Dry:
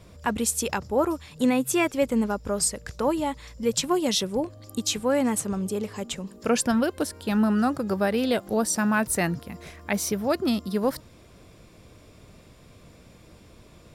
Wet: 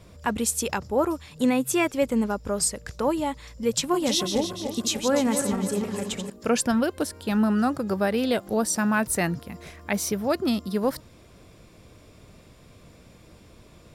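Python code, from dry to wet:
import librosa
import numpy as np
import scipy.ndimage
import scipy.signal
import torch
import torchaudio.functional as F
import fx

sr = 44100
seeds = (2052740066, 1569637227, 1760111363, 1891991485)

y = fx.reverse_delay_fb(x, sr, ms=148, feedback_pct=68, wet_db=-7, at=(3.79, 6.3))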